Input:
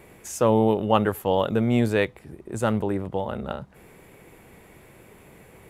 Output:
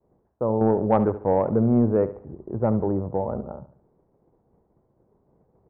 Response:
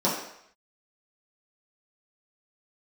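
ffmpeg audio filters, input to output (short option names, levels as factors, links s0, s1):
-filter_complex "[0:a]lowpass=f=1000:w=0.5412,lowpass=f=1000:w=1.3066,aemphasis=mode=reproduction:type=75fm,agate=range=0.0224:threshold=0.00794:ratio=3:detection=peak,asettb=1/sr,asplit=3[s0][s1][s2];[s0]atrim=end=0.614[s3];[s1]atrim=start=0.61:end=3.41,asetpts=PTS-STARTPTS,afade=t=in:d=0.004:c=qsin,afade=t=out:st=2.796:d=0.004:c=qsin,acontrast=67[s4];[s2]atrim=start=3.406[s5];[s3][s4]acrossfade=d=0.004:c1=hsin:c2=qsin[s6];[s6][s5]acrossfade=d=0.004:c1=qsin:c2=hsin,aecho=1:1:71|142|213|284:0.2|0.0738|0.0273|0.0101,volume=0.562"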